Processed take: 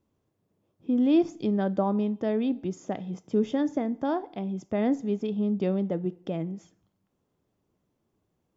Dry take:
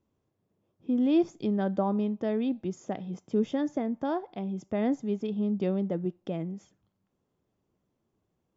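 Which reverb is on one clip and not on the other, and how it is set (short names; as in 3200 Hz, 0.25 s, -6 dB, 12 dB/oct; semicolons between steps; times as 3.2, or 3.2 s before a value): FDN reverb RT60 0.69 s, low-frequency decay 1×, high-frequency decay 0.9×, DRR 18.5 dB; gain +2 dB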